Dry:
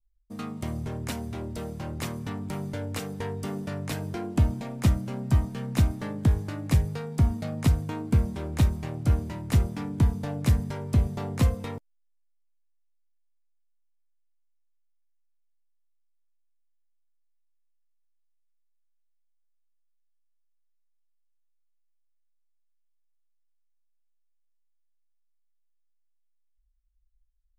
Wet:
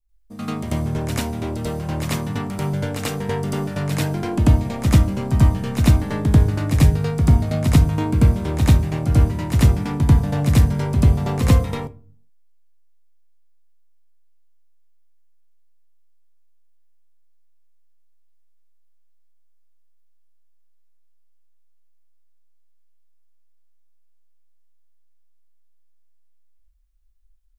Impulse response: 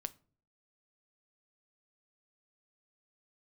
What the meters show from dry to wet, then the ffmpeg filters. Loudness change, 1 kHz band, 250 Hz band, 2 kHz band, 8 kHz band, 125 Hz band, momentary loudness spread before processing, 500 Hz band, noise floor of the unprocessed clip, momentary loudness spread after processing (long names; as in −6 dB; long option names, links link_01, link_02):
+9.0 dB, +9.5 dB, +9.0 dB, +9.0 dB, +9.0 dB, +9.0 dB, 9 LU, +9.0 dB, −69 dBFS, 9 LU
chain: -filter_complex "[0:a]asplit=2[link_01][link_02];[1:a]atrim=start_sample=2205,adelay=90[link_03];[link_02][link_03]afir=irnorm=-1:irlink=0,volume=9dB[link_04];[link_01][link_04]amix=inputs=2:normalize=0,volume=1.5dB"